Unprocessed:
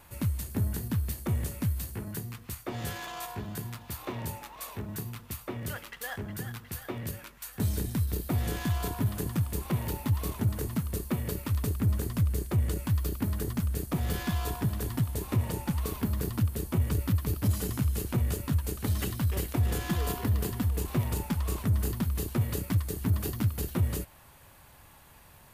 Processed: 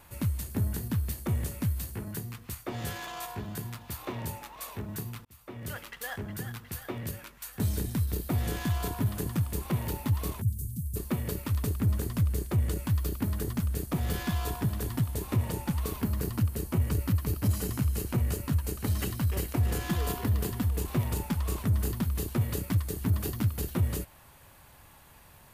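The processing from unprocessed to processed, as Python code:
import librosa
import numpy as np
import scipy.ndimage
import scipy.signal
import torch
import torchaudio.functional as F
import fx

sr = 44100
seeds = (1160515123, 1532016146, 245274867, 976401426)

y = fx.cheby1_bandstop(x, sr, low_hz=120.0, high_hz=8700.0, order=2, at=(10.4, 10.95), fade=0.02)
y = fx.notch(y, sr, hz=3500.0, q=13.0, at=(16.01, 19.83))
y = fx.edit(y, sr, fx.fade_in_span(start_s=5.25, length_s=0.55), tone=tone)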